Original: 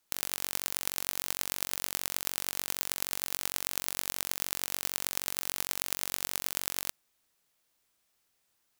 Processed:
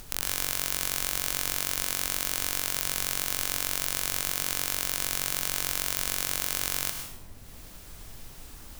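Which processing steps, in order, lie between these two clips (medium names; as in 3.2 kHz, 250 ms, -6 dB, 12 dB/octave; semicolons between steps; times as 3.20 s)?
peak limiter -9.5 dBFS, peak gain reduction 8 dB; upward compressor, threshold -44 dBFS; added noise brown -54 dBFS; plate-style reverb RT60 0.79 s, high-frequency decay 0.9×, pre-delay 90 ms, DRR 4.5 dB; trim +8 dB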